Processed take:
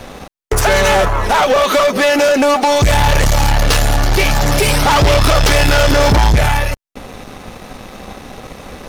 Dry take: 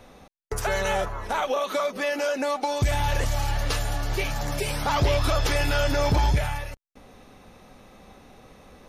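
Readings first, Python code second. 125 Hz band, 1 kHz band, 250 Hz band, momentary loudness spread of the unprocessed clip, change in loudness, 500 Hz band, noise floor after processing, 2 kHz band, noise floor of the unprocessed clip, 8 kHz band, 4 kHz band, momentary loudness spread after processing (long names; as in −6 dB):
+12.0 dB, +13.5 dB, +14.0 dB, 6 LU, +13.0 dB, +13.5 dB, −36 dBFS, +14.0 dB, −52 dBFS, +15.0 dB, +14.5 dB, 8 LU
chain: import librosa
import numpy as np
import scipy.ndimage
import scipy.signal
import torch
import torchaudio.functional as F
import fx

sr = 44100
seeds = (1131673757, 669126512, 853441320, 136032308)

y = fx.leveller(x, sr, passes=3)
y = y * librosa.db_to_amplitude(8.0)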